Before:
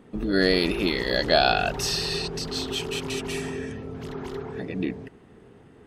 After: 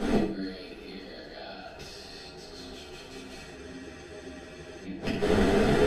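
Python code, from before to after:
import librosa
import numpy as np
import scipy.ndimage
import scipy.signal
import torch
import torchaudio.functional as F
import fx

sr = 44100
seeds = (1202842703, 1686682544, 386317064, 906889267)

p1 = fx.bin_compress(x, sr, power=0.6)
p2 = fx.rider(p1, sr, range_db=4, speed_s=0.5)
p3 = fx.gate_flip(p2, sr, shuts_db=-17.0, range_db=-29)
p4 = p3 + fx.echo_feedback(p3, sr, ms=66, feedback_pct=36, wet_db=-7.0, dry=0)
p5 = fx.room_shoebox(p4, sr, seeds[0], volume_m3=32.0, walls='mixed', distance_m=1.1)
p6 = fx.spec_freeze(p5, sr, seeds[1], at_s=3.57, hold_s=1.26)
p7 = fx.ensemble(p6, sr)
y = p7 * 10.0 ** (4.0 / 20.0)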